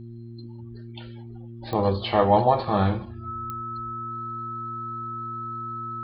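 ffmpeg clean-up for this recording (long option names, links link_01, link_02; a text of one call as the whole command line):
ffmpeg -i in.wav -af "adeclick=threshold=4,bandreject=frequency=116.5:width_type=h:width=4,bandreject=frequency=233:width_type=h:width=4,bandreject=frequency=349.5:width_type=h:width=4,bandreject=frequency=1300:width=30,agate=range=-21dB:threshold=-32dB" out.wav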